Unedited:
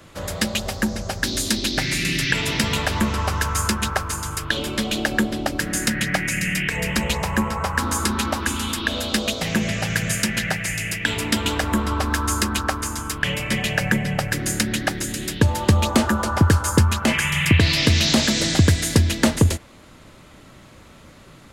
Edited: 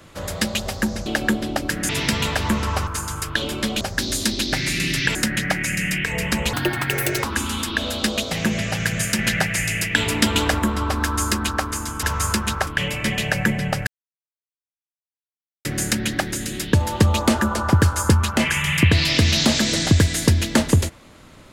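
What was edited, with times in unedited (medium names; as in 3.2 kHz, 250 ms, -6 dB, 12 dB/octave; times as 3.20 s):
1.06–2.40 s: swap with 4.96–5.79 s
3.38–4.02 s: move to 13.13 s
7.17–8.34 s: speed 165%
10.29–11.69 s: gain +3 dB
14.33 s: insert silence 1.78 s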